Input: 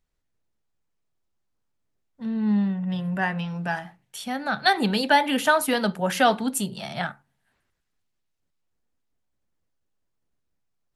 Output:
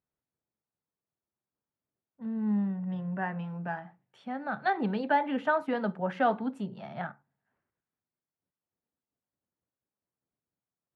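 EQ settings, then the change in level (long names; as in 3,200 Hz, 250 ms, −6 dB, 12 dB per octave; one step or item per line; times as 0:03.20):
high-pass filter 110 Hz 12 dB per octave
low-pass filter 1,500 Hz 12 dB per octave
−6.0 dB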